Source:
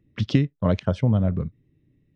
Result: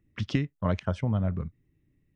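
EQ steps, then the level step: ten-band graphic EQ 125 Hz -7 dB, 250 Hz -5 dB, 500 Hz -7 dB, 4 kHz -7 dB; 0.0 dB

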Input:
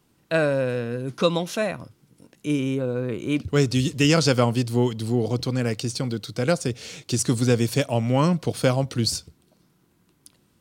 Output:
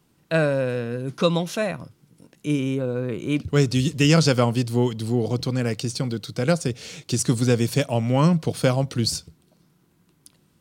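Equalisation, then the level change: peaking EQ 160 Hz +6 dB 0.25 oct; 0.0 dB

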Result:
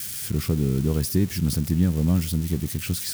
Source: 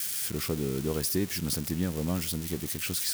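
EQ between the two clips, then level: tone controls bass +13 dB, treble 0 dB; 0.0 dB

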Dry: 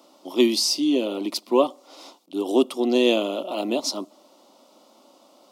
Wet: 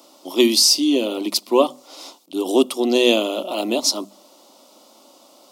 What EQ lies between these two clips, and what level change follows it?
treble shelf 4.2 kHz +8.5 dB; hum notches 50/100/150/200/250 Hz; +3.0 dB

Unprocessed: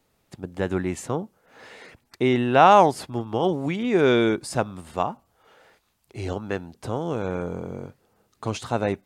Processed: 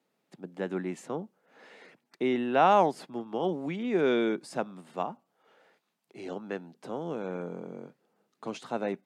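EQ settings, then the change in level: steep high-pass 160 Hz 36 dB/octave; peaking EQ 1.1 kHz -2 dB; treble shelf 5.2 kHz -9 dB; -6.5 dB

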